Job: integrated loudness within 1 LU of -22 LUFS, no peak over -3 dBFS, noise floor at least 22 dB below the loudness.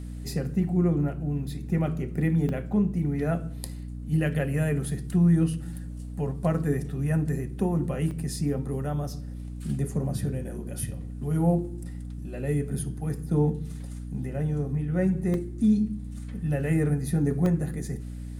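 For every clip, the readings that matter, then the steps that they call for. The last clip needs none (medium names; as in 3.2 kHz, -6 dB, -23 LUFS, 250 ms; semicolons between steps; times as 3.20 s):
dropouts 4; longest dropout 1.4 ms; hum 60 Hz; highest harmonic 300 Hz; hum level -34 dBFS; loudness -28.0 LUFS; peak level -13.0 dBFS; loudness target -22.0 LUFS
-> interpolate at 2.49/8.11/15.34/17.46 s, 1.4 ms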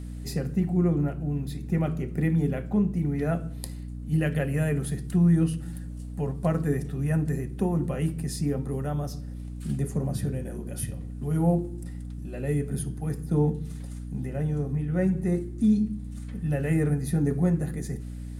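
dropouts 0; hum 60 Hz; highest harmonic 300 Hz; hum level -34 dBFS
-> de-hum 60 Hz, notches 5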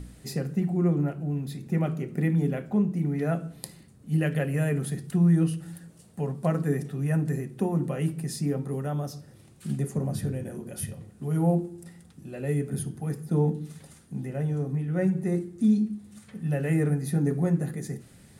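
hum not found; loudness -28.0 LUFS; peak level -13.0 dBFS; loudness target -22.0 LUFS
-> trim +6 dB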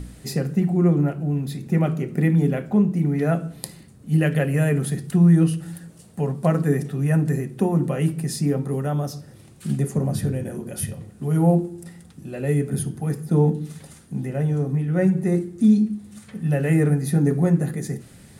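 loudness -22.0 LUFS; peak level -7.0 dBFS; noise floor -47 dBFS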